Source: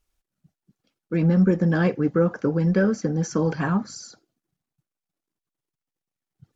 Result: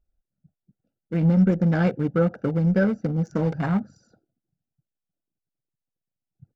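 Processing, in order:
adaptive Wiener filter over 41 samples
comb filter 1.4 ms, depth 39%

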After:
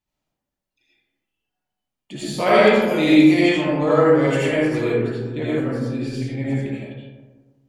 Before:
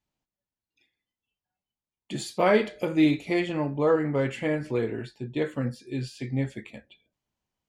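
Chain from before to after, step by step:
0:02.32–0:04.84: high-shelf EQ 2,400 Hz +10 dB
comb and all-pass reverb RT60 1.4 s, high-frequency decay 0.35×, pre-delay 40 ms, DRR −7.5 dB
level −1.5 dB

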